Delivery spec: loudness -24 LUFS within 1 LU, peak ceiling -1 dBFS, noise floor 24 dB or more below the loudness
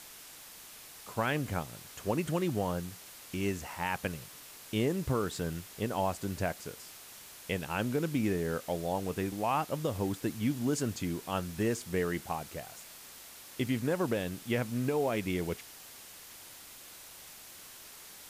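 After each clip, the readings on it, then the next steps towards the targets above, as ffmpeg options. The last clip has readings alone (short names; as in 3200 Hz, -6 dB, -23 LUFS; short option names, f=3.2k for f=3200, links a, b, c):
noise floor -51 dBFS; noise floor target -58 dBFS; loudness -34.0 LUFS; peak -18.5 dBFS; loudness target -24.0 LUFS
-> -af "afftdn=nr=7:nf=-51"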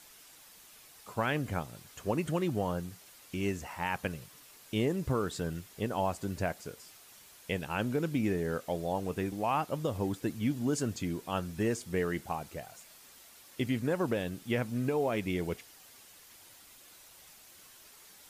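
noise floor -56 dBFS; noise floor target -58 dBFS
-> -af "afftdn=nr=6:nf=-56"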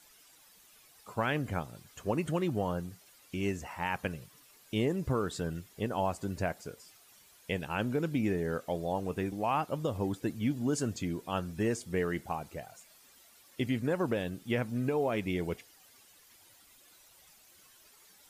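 noise floor -61 dBFS; loudness -34.0 LUFS; peak -19.0 dBFS; loudness target -24.0 LUFS
-> -af "volume=10dB"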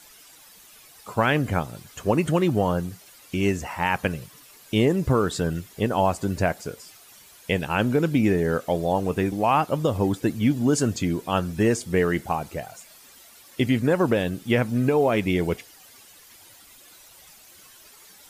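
loudness -24.0 LUFS; peak -9.0 dBFS; noise floor -51 dBFS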